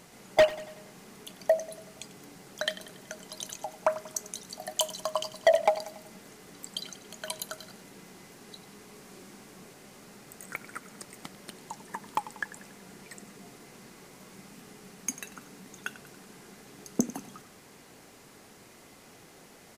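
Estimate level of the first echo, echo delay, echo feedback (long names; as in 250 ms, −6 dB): −16.0 dB, 94 ms, 52%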